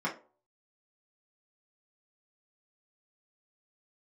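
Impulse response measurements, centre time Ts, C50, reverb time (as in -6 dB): 17 ms, 11.5 dB, 0.40 s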